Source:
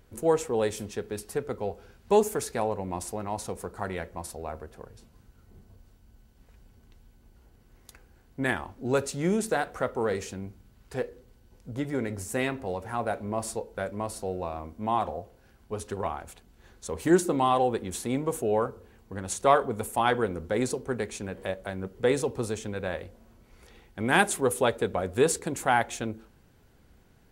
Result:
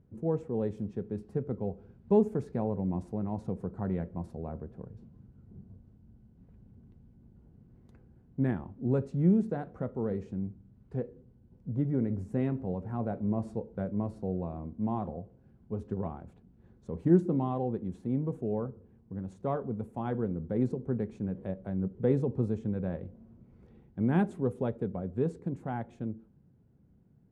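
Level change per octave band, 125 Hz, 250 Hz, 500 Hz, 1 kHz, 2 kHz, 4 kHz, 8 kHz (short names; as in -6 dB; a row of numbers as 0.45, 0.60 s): +4.0 dB, +1.5 dB, -6.0 dB, -12.5 dB, -18.5 dB, under -20 dB, under -30 dB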